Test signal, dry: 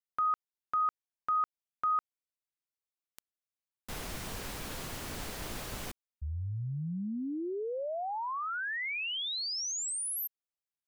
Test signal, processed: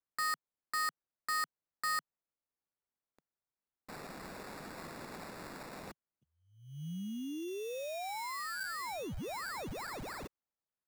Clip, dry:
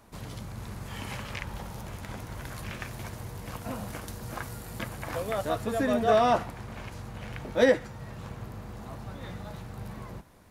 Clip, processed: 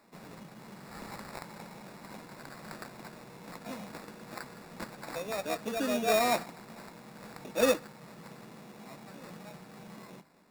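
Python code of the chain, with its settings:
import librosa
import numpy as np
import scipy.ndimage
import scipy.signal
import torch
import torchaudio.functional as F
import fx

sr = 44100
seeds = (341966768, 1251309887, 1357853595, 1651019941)

y = scipy.signal.sosfilt(scipy.signal.butter(8, 150.0, 'highpass', fs=sr, output='sos'), x)
y = fx.high_shelf(y, sr, hz=9700.0, db=-6.0)
y = fx.sample_hold(y, sr, seeds[0], rate_hz=3100.0, jitter_pct=0)
y = y * librosa.db_to_amplitude(-4.5)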